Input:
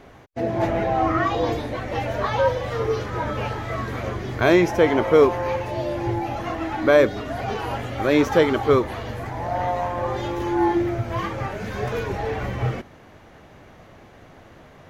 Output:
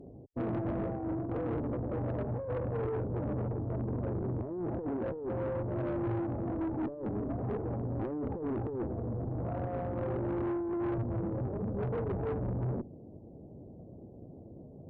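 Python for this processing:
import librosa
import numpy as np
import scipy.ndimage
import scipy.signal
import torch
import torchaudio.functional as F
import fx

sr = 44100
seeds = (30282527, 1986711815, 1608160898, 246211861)

y = fx.highpass(x, sr, hz=140.0, slope=6)
y = fx.over_compress(y, sr, threshold_db=-25.0, ratio=-1.0)
y = scipy.ndimage.gaussian_filter1d(y, 19.0, mode='constant')
y = fx.tube_stage(y, sr, drive_db=33.0, bias=0.35)
y = y * librosa.db_to_amplitude(3.0)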